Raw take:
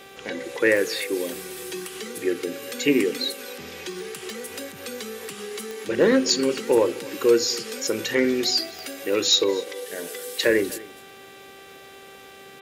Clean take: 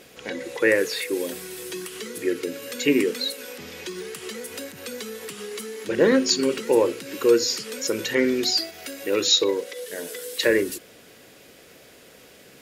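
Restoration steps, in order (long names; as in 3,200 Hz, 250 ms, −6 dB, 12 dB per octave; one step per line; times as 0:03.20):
clipped peaks rebuilt −9.5 dBFS
click removal
hum removal 391 Hz, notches 10
echo removal 249 ms −20.5 dB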